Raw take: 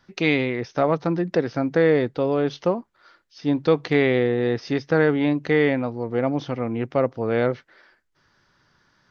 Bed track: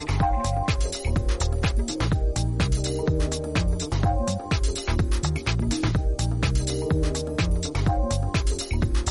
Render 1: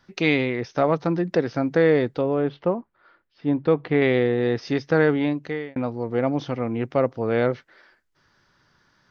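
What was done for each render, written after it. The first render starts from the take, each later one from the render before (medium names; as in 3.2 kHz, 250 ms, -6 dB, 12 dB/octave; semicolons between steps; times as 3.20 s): 2.21–4.02 s: distance through air 400 m; 5.13–5.76 s: fade out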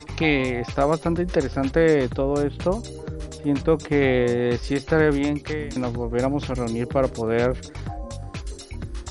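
add bed track -9.5 dB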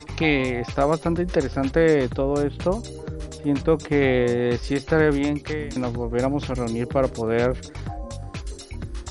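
no audible change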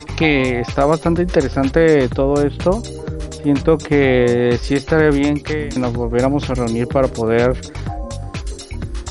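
trim +7 dB; peak limiter -2 dBFS, peak gain reduction 3 dB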